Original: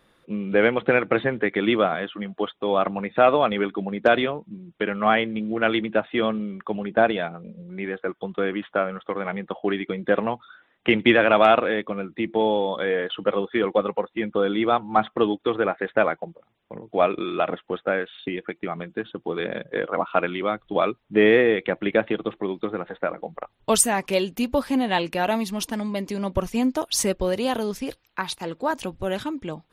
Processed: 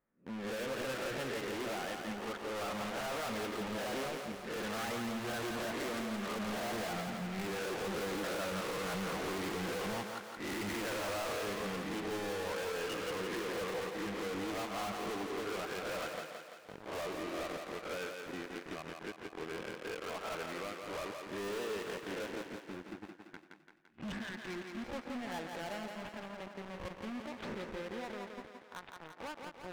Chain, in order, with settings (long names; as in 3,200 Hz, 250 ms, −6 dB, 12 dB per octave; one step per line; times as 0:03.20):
peak hold with a rise ahead of every peak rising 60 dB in 0.37 s
source passing by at 0:08.18, 18 m/s, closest 25 metres
time-frequency box erased 0:22.41–0:24.85, 380–1,400 Hz
leveller curve on the samples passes 5
low-pass filter 2,100 Hz 24 dB per octave
hard clipping −38.5 dBFS, distortion −1 dB
feedback echo with a high-pass in the loop 170 ms, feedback 59%, high-pass 220 Hz, level −4.5 dB